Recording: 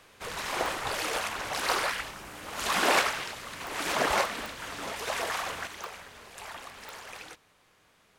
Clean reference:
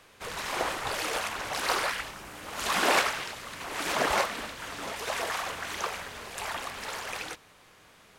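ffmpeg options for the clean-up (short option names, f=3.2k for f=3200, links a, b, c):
-af "adeclick=t=4,asetnsamples=n=441:p=0,asendcmd='5.67 volume volume 7.5dB',volume=0dB"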